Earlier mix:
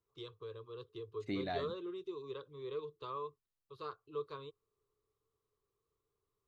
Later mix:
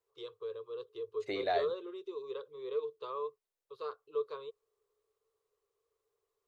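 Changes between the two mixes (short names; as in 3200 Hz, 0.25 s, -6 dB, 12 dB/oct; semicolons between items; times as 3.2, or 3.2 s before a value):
second voice +5.0 dB; master: add resonant low shelf 330 Hz -11.5 dB, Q 3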